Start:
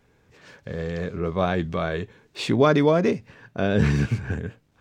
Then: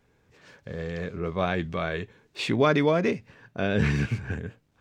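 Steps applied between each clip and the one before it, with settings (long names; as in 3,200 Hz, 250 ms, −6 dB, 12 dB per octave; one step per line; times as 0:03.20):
dynamic equaliser 2,300 Hz, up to +6 dB, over −42 dBFS, Q 1.2
level −4 dB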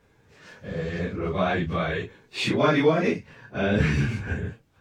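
random phases in long frames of 100 ms
in parallel at −3 dB: downward compressor, threshold −31 dBFS, peak gain reduction 14.5 dB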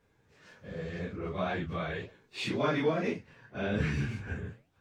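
flanger 1.9 Hz, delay 6.7 ms, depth 9.8 ms, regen −85%
level −4 dB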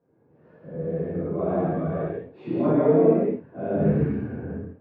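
flat-topped band-pass 310 Hz, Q 0.54
reverb whose tail is shaped and stops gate 270 ms flat, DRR −8 dB
level +3 dB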